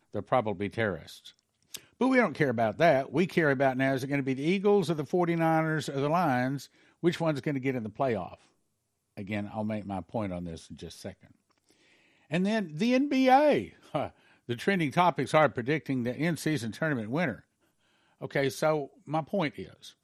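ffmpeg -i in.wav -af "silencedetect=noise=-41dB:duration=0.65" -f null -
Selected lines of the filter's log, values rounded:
silence_start: 8.34
silence_end: 9.17 | silence_duration: 0.83
silence_start: 11.13
silence_end: 12.31 | silence_duration: 1.18
silence_start: 17.36
silence_end: 18.21 | silence_duration: 0.86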